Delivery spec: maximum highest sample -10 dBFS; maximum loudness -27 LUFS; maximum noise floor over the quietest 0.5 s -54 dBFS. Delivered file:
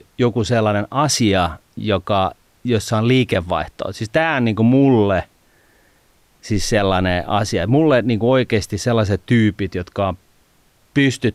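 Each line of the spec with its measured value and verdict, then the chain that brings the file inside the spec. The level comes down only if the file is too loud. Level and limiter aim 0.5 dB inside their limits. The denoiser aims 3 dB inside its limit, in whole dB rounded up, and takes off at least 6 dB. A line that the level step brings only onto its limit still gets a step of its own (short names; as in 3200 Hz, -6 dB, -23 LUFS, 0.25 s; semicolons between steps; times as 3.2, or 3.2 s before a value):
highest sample -5.5 dBFS: fail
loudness -18.0 LUFS: fail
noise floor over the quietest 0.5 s -56 dBFS: OK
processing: gain -9.5 dB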